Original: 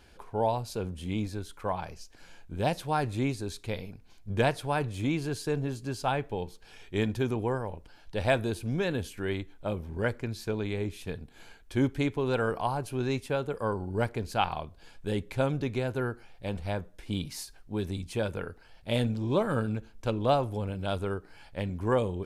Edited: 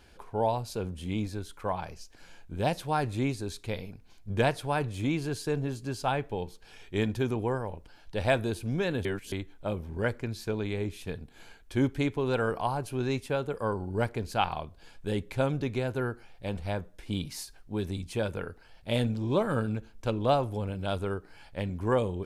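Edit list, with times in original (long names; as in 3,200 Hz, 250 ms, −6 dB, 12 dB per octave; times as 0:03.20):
0:09.05–0:09.32: reverse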